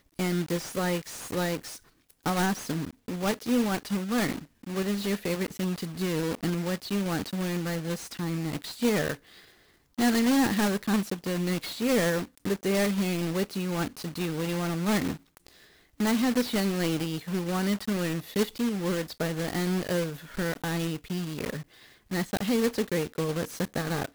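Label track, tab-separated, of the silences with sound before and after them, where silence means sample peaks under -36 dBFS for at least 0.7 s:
9.150000	9.980000	silence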